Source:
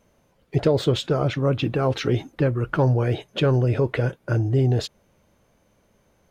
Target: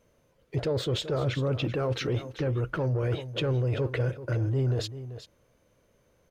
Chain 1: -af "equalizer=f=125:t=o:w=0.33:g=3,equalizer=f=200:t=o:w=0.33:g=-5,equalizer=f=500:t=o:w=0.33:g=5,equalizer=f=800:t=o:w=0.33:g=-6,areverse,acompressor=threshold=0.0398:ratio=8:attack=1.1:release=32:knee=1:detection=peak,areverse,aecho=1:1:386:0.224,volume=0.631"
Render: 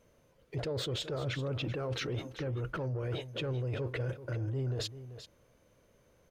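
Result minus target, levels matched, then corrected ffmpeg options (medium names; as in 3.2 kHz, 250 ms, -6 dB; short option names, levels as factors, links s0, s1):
compression: peak gain reduction +8 dB
-af "equalizer=f=125:t=o:w=0.33:g=3,equalizer=f=200:t=o:w=0.33:g=-5,equalizer=f=500:t=o:w=0.33:g=5,equalizer=f=800:t=o:w=0.33:g=-6,areverse,acompressor=threshold=0.112:ratio=8:attack=1.1:release=32:knee=1:detection=peak,areverse,aecho=1:1:386:0.224,volume=0.631"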